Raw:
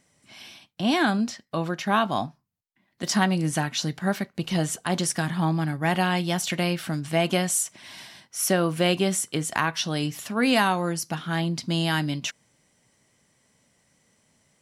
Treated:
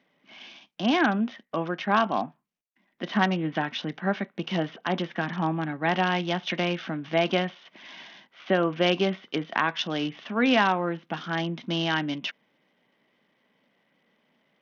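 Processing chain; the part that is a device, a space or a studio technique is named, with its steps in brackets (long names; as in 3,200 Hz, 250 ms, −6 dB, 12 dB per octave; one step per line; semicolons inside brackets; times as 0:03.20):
Bluetooth headset (high-pass filter 190 Hz 24 dB per octave; downsampling to 8,000 Hz; SBC 64 kbit/s 48,000 Hz)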